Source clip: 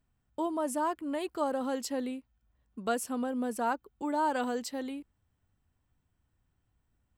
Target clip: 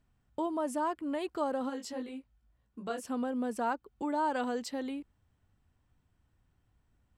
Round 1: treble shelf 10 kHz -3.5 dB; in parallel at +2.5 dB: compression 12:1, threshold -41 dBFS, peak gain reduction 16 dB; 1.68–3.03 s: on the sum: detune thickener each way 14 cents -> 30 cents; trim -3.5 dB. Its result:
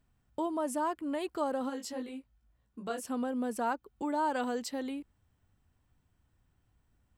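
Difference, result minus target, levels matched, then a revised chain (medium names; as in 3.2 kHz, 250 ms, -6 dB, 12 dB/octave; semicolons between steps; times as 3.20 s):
8 kHz band +3.0 dB
treble shelf 10 kHz -12.5 dB; in parallel at +2.5 dB: compression 12:1, threshold -41 dBFS, peak gain reduction 16 dB; 1.68–3.03 s: on the sum: detune thickener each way 14 cents -> 30 cents; trim -3.5 dB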